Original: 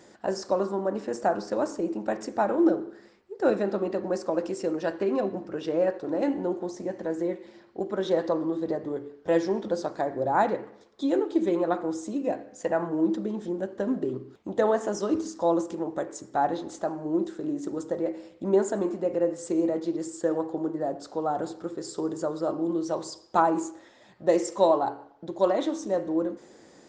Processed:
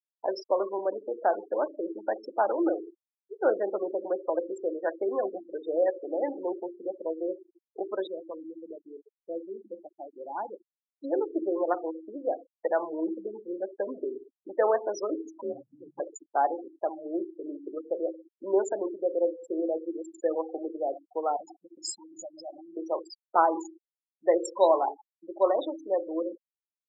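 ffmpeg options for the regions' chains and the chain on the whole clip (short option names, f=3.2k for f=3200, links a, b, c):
-filter_complex "[0:a]asettb=1/sr,asplit=3[a][b][c];[a]atrim=end=8.074[d];[b]atrim=start=8.07:end=11.04,asetpts=PTS-STARTPTS,afade=t=in:d=0.004:c=qsin,afade=t=out:st=2.966:d=0.004:c=qsin,lowpass=1.1k,equalizer=f=590:t=o:w=1.9:g=-13,asplit=2[e][f];[f]adelay=44,volume=-13dB[g];[e][g]amix=inputs=2:normalize=0,atrim=end_sample=130977[h];[c]atrim=start=11.036[i];[d][h]acrossfade=d=0.004:c1=hsin:c2=qsin[j];[j][i]acrossfade=d=0.004:c1=qsin:c2=hsin,asettb=1/sr,asplit=3[k][l][m];[k]atrim=end=15.414[n];[l]atrim=start=15.41:end=16,asetpts=PTS-STARTPTS,afade=t=in:d=0.004:c=qsin,afade=t=out:st=0.586:d=0.004:c=qsin,aemphasis=mode=reproduction:type=75fm,afreqshift=-460,acrusher=bits=8:mix=0:aa=0.5[o];[m]atrim=start=15.996[p];[n][o]acrossfade=d=0.004:c1=hsin:c2=qsin[q];[q][p]acrossfade=d=0.004:c1=qsin:c2=hsin,asettb=1/sr,asplit=3[r][s][t];[r]atrim=end=21.364[u];[s]atrim=start=21.36:end=22.77,asetpts=PTS-STARTPTS,afade=t=in:d=0.004:c=qsin,afade=t=out:st=1.406:d=0.004:c=qsin,acompressor=threshold=-34dB:ratio=16:attack=3.2:release=140:knee=1:detection=peak,aecho=1:1:1.2:0.92,atrim=end_sample=62181,adynamicequalizer=threshold=0.00141:dfrequency=2500:dqfactor=0.7:tfrequency=2500:tqfactor=0.7:attack=5:release=100:ratio=0.375:range=3.5:mode=boostabove:tftype=highshelf[v];[t]atrim=start=22.766[w];[u][v]acrossfade=d=0.004:c1=hsin:c2=qsin[x];[x][w]acrossfade=d=0.004:c1=qsin:c2=hsin,afftfilt=real='re*gte(hypot(re,im),0.0447)':imag='im*gte(hypot(re,im),0.0447)':win_size=1024:overlap=0.75,highpass=f=380:w=0.5412,highpass=f=380:w=1.3066"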